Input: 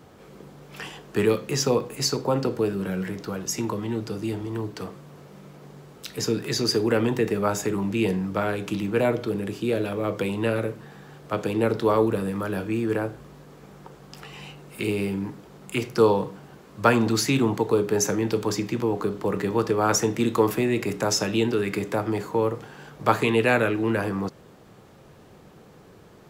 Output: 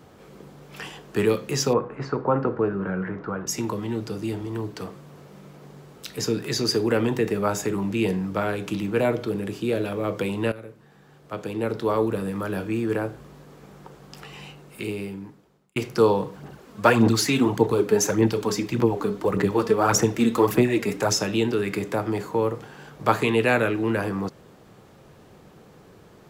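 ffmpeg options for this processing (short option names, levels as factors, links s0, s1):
-filter_complex "[0:a]asettb=1/sr,asplit=3[s0][s1][s2];[s0]atrim=end=1.734[s3];[s1]atrim=start=1.73:end=3.47,asetpts=PTS-STARTPTS,afade=t=in:d=0.004:c=qsin,afade=t=out:st=1.736:d=0.004:c=qsin,lowpass=f=1400:t=q:w=2[s4];[s2]atrim=start=3.466[s5];[s3][s4]acrossfade=d=0.004:c1=hsin:c2=qsin[s6];[s6][s5]acrossfade=d=0.004:c1=qsin:c2=hsin,asplit=3[s7][s8][s9];[s7]afade=t=out:st=16.31:d=0.02[s10];[s8]aphaser=in_gain=1:out_gain=1:delay=4.6:decay=0.54:speed=1.7:type=sinusoidal,afade=t=in:st=16.31:d=0.02,afade=t=out:st=21.12:d=0.02[s11];[s9]afade=t=in:st=21.12:d=0.02[s12];[s10][s11][s12]amix=inputs=3:normalize=0,asplit=3[s13][s14][s15];[s13]atrim=end=10.52,asetpts=PTS-STARTPTS,afade=t=out:st=10.516:d=0.004:c=hsin:silence=0.16788[s16];[s14]atrim=start=10.52:end=15.76,asetpts=PTS-STARTPTS,afade=t=in:d=1.98:silence=0.16788,afade=t=out:st=3.84:d=1.4[s17];[s15]atrim=start=15.76,asetpts=PTS-STARTPTS,afade=t=in:d=0.004:c=hsin[s18];[s16][s17][s18]concat=n=3:v=0:a=1"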